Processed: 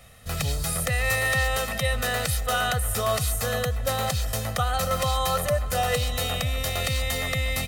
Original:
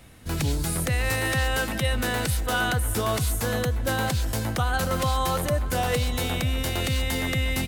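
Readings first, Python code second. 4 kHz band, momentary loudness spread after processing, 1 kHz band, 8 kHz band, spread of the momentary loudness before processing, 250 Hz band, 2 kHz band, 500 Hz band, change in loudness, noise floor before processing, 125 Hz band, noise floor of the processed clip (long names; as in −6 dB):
+1.5 dB, 3 LU, +1.0 dB, +2.0 dB, 2 LU, −7.0 dB, +0.5 dB, +1.0 dB, +0.5 dB, −29 dBFS, −2.0 dB, −30 dBFS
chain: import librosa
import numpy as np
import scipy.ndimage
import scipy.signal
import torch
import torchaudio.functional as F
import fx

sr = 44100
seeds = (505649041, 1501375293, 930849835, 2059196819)

y = fx.low_shelf(x, sr, hz=450.0, db=-6.0)
y = y + 0.79 * np.pad(y, (int(1.6 * sr / 1000.0), 0))[:len(y)]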